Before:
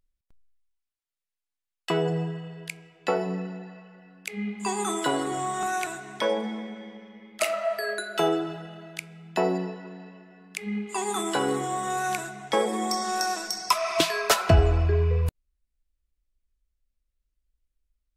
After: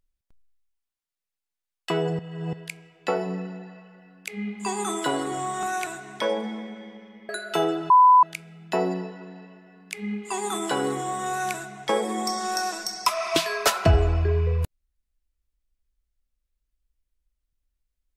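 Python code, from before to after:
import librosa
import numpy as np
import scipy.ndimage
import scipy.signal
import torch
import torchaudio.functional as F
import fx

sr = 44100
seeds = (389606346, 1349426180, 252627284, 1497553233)

y = fx.edit(x, sr, fx.reverse_span(start_s=2.19, length_s=0.34),
    fx.cut(start_s=7.29, length_s=0.64),
    fx.bleep(start_s=8.54, length_s=0.33, hz=1000.0, db=-10.5), tone=tone)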